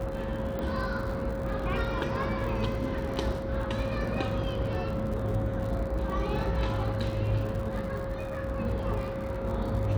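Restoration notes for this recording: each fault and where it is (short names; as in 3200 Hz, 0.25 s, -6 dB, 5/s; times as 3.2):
crackle 88/s -37 dBFS
tone 540 Hz -35 dBFS
0.59 pop -23 dBFS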